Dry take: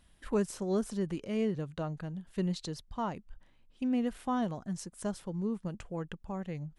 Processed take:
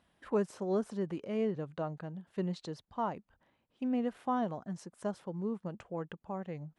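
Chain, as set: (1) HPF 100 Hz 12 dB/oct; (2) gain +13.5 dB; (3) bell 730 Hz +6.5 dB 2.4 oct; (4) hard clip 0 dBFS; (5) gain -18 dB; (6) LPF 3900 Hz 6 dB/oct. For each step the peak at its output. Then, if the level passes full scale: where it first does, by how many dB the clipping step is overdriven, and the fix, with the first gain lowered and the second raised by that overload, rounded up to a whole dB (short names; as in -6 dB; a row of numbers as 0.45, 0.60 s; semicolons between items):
-20.0, -6.5, -2.5, -2.5, -20.5, -20.5 dBFS; no overload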